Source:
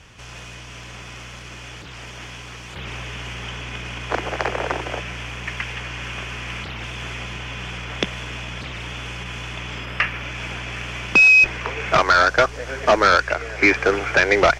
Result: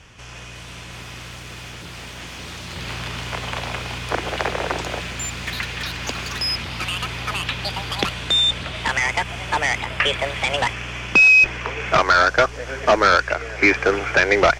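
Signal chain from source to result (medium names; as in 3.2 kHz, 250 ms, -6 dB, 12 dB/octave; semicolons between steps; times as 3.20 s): ever faster or slower copies 417 ms, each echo +6 st, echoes 3, each echo -6 dB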